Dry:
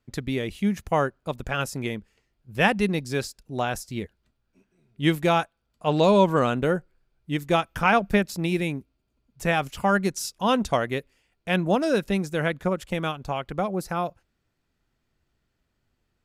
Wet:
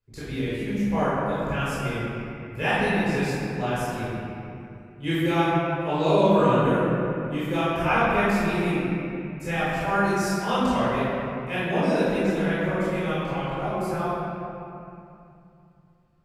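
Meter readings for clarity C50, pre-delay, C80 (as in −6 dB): −5.0 dB, 19 ms, −2.5 dB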